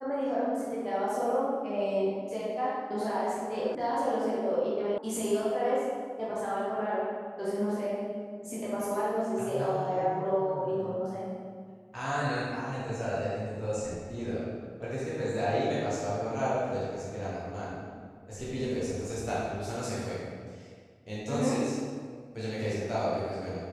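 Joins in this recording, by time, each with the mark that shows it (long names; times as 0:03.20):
0:03.75: cut off before it has died away
0:04.98: cut off before it has died away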